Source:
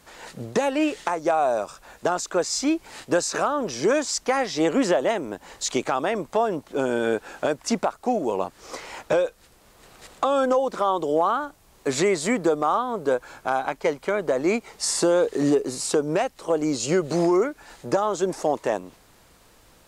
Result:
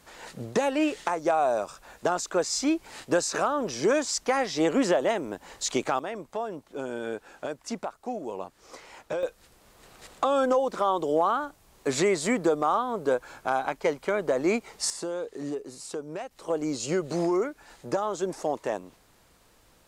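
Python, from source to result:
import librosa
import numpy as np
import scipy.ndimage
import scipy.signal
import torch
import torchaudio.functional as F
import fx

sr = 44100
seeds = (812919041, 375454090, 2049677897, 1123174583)

y = fx.gain(x, sr, db=fx.steps((0.0, -2.5), (5.99, -10.0), (9.23, -2.5), (14.9, -13.0), (16.31, -5.5)))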